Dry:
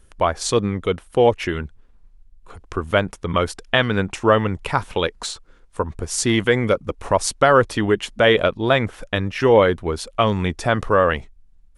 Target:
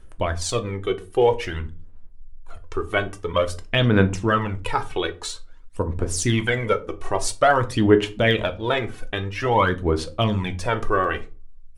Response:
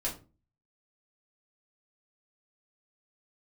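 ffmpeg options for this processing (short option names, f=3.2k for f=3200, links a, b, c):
-filter_complex "[0:a]aphaser=in_gain=1:out_gain=1:delay=2.7:decay=0.65:speed=0.5:type=sinusoidal,asplit=2[a][b];[1:a]atrim=start_sample=2205[c];[b][c]afir=irnorm=-1:irlink=0,volume=-8dB[d];[a][d]amix=inputs=2:normalize=0,volume=-8dB"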